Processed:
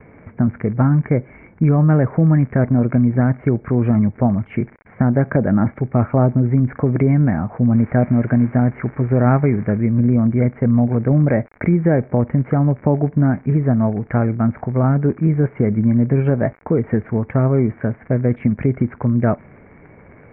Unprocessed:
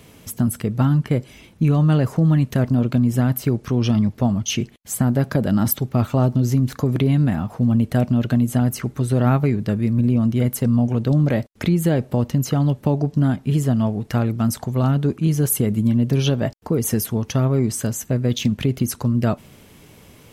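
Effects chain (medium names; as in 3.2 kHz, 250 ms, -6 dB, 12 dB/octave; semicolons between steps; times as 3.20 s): gate with hold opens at -40 dBFS; crackle 46 per s -27 dBFS, from 7.74 s 540 per s, from 9.78 s 70 per s; rippled Chebyshev low-pass 2.3 kHz, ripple 3 dB; trim +5 dB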